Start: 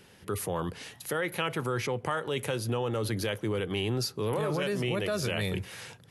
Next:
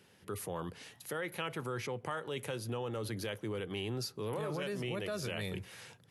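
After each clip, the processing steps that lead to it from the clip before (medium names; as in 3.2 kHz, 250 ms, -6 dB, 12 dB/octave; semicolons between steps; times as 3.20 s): high-pass 77 Hz; trim -7.5 dB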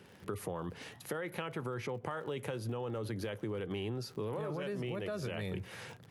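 crackle 53 per s -46 dBFS; treble shelf 2.6 kHz -10 dB; compression, threshold -43 dBFS, peak gain reduction 9 dB; trim +8 dB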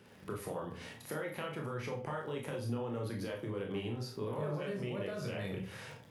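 reverberation RT60 0.40 s, pre-delay 20 ms, DRR -0.5 dB; trim -3.5 dB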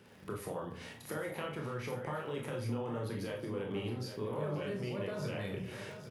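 delay 811 ms -9.5 dB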